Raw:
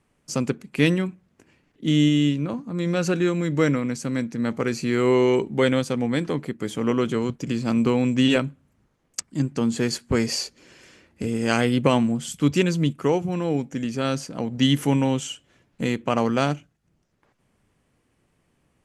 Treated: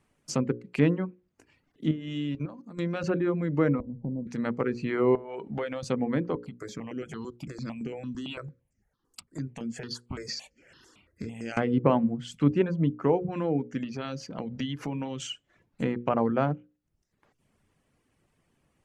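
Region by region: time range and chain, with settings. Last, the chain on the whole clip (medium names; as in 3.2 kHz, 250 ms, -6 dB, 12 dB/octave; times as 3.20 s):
1.91–3.04 s: bass shelf 66 Hz -5.5 dB + level held to a coarse grid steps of 13 dB
3.80–4.27 s: Chebyshev low-pass 970 Hz, order 8 + tilt EQ -4 dB/octave + compression 5:1, threshold -27 dBFS
5.15–5.83 s: FFT filter 330 Hz 0 dB, 630 Hz +10 dB, 8.3 kHz -3 dB + compression, threshold -27 dBFS
6.35–11.57 s: compression, threshold -26 dBFS + stepped phaser 8.9 Hz 630–3800 Hz
13.83–15.20 s: peaking EQ 8.7 kHz -13 dB 0.69 oct + compression 5:1, threshold -26 dBFS
whole clip: reverb removal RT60 0.67 s; hum notches 60/120/180/240/300/360/420/480/540 Hz; low-pass that closes with the level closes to 1.3 kHz, closed at -22 dBFS; trim -1.5 dB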